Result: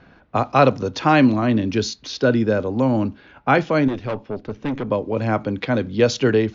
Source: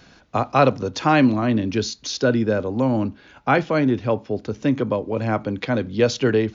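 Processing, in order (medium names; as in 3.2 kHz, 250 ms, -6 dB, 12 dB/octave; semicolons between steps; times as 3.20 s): 3.88–4.91 s: valve stage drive 21 dB, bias 0.6; level-controlled noise filter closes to 1.9 kHz, open at -16 dBFS; trim +1.5 dB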